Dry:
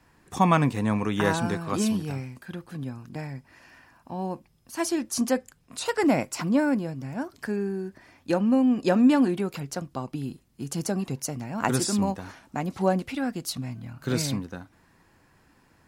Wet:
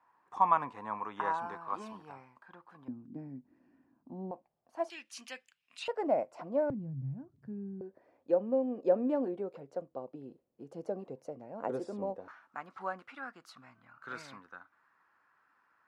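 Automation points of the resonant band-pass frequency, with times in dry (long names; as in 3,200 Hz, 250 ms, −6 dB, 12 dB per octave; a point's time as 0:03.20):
resonant band-pass, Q 3.6
1,000 Hz
from 0:02.88 270 Hz
from 0:04.31 690 Hz
from 0:04.90 2,700 Hz
from 0:05.88 620 Hz
from 0:06.70 130 Hz
from 0:07.81 520 Hz
from 0:12.28 1,300 Hz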